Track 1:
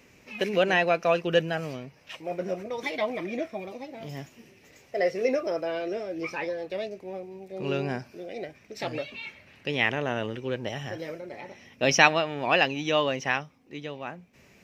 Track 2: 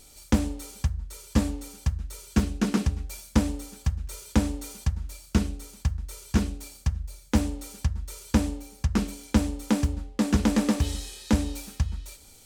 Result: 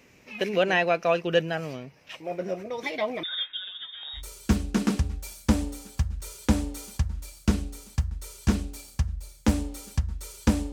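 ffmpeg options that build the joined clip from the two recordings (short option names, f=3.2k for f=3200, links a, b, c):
-filter_complex "[0:a]asettb=1/sr,asplit=3[a][b][c];[a]atrim=end=3.234[d];[b]atrim=start=3.23:end=4.23,asetpts=PTS-STARTPTS,afade=t=in:d=0.004:c=qsin,afade=t=out:st=0.996:d=0.004:c=qsin,lowpass=f=3.3k:t=q:w=0.5098,lowpass=f=3.3k:t=q:w=0.6013,lowpass=f=3.3k:t=q:w=0.9,lowpass=f=3.3k:t=q:w=2.563,afreqshift=-3900[e];[c]atrim=start=4.226[f];[d][e]acrossfade=d=0.004:c1=hsin:c2=qsin[g];[g][f]acrossfade=d=0.004:c1=qsin:c2=hsin,apad=whole_dur=10.72,atrim=end=10.72,atrim=end=4.23,asetpts=PTS-STARTPTS[h];[1:a]atrim=start=2:end=8.59,asetpts=PTS-STARTPTS[i];[h][i]acrossfade=d=0.1:c1=tri:c2=tri"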